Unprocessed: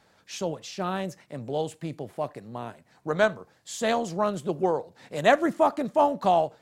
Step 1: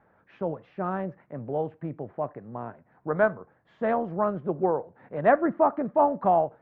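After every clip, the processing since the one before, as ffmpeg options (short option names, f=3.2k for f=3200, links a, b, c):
-af "lowpass=f=1.7k:w=0.5412,lowpass=f=1.7k:w=1.3066"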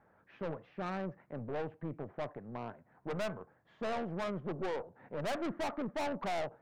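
-af "aeval=exprs='(tanh(35.5*val(0)+0.45)-tanh(0.45))/35.5':c=same,volume=-2.5dB"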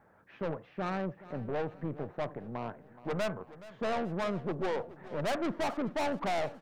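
-af "aecho=1:1:423|846|1269|1692:0.133|0.0613|0.0282|0.013,volume=4dB"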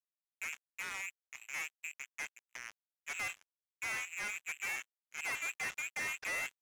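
-filter_complex "[0:a]lowpass=f=2.3k:t=q:w=0.5098,lowpass=f=2.3k:t=q:w=0.6013,lowpass=f=2.3k:t=q:w=0.9,lowpass=f=2.3k:t=q:w=2.563,afreqshift=-2700,asplit=2[a][b];[b]adelay=90,highpass=300,lowpass=3.4k,asoftclip=type=hard:threshold=-31dB,volume=-28dB[c];[a][c]amix=inputs=2:normalize=0,acrusher=bits=4:mix=0:aa=0.5,volume=-7.5dB"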